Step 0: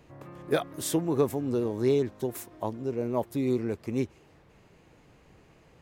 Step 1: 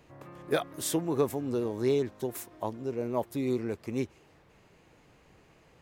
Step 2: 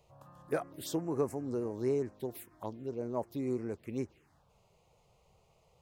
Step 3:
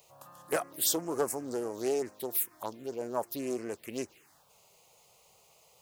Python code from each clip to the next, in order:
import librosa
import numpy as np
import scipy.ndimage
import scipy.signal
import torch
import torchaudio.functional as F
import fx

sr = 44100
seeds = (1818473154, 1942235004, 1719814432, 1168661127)

y1 = fx.low_shelf(x, sr, hz=450.0, db=-4.0)
y2 = fx.env_phaser(y1, sr, low_hz=260.0, high_hz=3500.0, full_db=-27.5)
y2 = y2 * librosa.db_to_amplitude(-4.5)
y3 = fx.riaa(y2, sr, side='recording')
y3 = fx.doppler_dist(y3, sr, depth_ms=0.21)
y3 = y3 * librosa.db_to_amplitude(5.0)